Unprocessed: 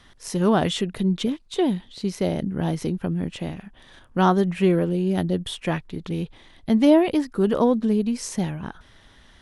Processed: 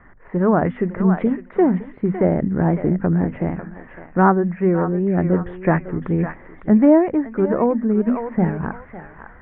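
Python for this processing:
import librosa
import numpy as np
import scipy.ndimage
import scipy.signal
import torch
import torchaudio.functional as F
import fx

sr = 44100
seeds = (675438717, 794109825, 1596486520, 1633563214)

y = scipy.signal.sosfilt(scipy.signal.butter(8, 2000.0, 'lowpass', fs=sr, output='sos'), x)
y = fx.hum_notches(y, sr, base_hz=50, count=5)
y = fx.echo_thinned(y, sr, ms=557, feedback_pct=36, hz=1100.0, wet_db=-6.5)
y = fx.rider(y, sr, range_db=4, speed_s=0.5)
y = fx.record_warp(y, sr, rpm=78.0, depth_cents=100.0)
y = y * librosa.db_to_amplitude(4.0)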